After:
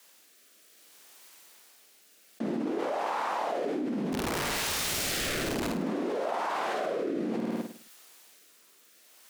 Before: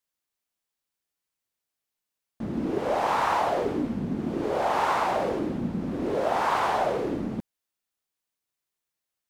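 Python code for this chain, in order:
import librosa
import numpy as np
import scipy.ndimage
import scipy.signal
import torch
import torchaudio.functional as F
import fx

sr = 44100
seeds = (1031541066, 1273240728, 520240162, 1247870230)

y = scipy.signal.sosfilt(scipy.signal.bessel(8, 310.0, 'highpass', norm='mag', fs=sr, output='sos'), x)
y = fx.overflow_wrap(y, sr, gain_db=29.0, at=(4.12, 5.68), fade=0.02)
y = fx.room_flutter(y, sr, wall_m=9.0, rt60_s=0.48)
y = fx.rotary(y, sr, hz=0.6)
y = fx.env_flatten(y, sr, amount_pct=100)
y = y * 10.0 ** (-8.0 / 20.0)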